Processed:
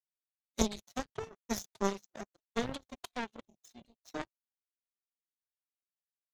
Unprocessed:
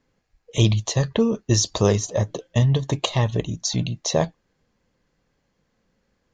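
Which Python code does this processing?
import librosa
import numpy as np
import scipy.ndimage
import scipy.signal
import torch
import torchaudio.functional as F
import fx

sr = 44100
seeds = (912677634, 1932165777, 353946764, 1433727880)

y = fx.pitch_keep_formants(x, sr, semitones=11.5)
y = fx.power_curve(y, sr, exponent=3.0)
y = F.gain(torch.from_numpy(y), -3.0).numpy()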